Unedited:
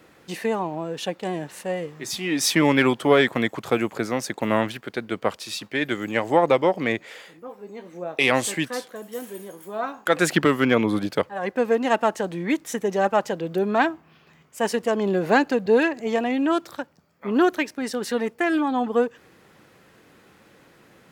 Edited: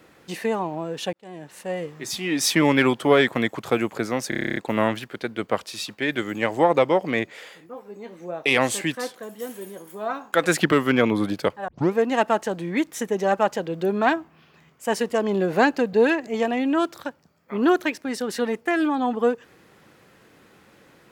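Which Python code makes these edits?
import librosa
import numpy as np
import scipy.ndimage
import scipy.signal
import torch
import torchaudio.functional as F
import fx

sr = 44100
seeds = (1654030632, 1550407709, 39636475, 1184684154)

y = fx.edit(x, sr, fx.fade_in_span(start_s=1.13, length_s=0.69),
    fx.stutter(start_s=4.29, slice_s=0.03, count=10),
    fx.tape_start(start_s=11.41, length_s=0.26), tone=tone)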